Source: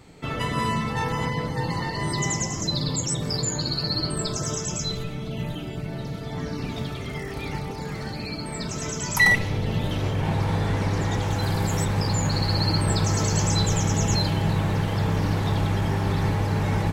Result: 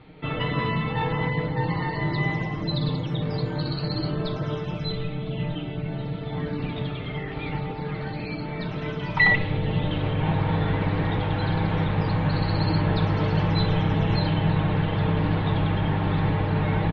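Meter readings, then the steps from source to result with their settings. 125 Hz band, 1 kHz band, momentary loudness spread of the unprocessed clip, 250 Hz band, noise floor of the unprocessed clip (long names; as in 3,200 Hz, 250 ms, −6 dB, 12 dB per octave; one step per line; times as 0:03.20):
+0.5 dB, 0.0 dB, 10 LU, +1.5 dB, −33 dBFS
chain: Butterworth low-pass 3,800 Hz 48 dB per octave
comb filter 6.5 ms, depth 42%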